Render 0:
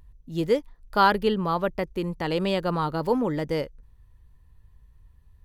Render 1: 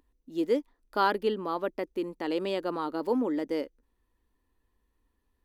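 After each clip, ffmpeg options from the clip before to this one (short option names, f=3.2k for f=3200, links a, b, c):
-af "lowshelf=f=190:t=q:w=3:g=-13.5,volume=-7dB"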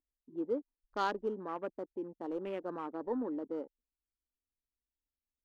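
-af "adynamicsmooth=sensitivity=7:basefreq=680,afwtdn=0.01,volume=-8dB"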